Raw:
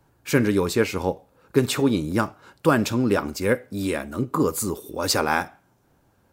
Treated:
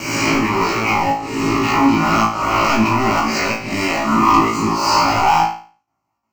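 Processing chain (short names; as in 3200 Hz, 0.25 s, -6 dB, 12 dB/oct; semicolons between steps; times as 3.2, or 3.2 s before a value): spectral swells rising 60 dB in 0.83 s; gate with hold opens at -51 dBFS; HPF 890 Hz 6 dB/oct; treble ducked by the level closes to 1600 Hz, closed at -19 dBFS; high shelf 2200 Hz -11 dB; in parallel at +2.5 dB: compressor, threshold -34 dBFS, peak gain reduction 16 dB; on the sum: sample leveller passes 5; fixed phaser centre 2400 Hz, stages 8; on a send: flutter echo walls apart 3.1 m, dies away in 0.4 s; on the sum: gain -1.5 dB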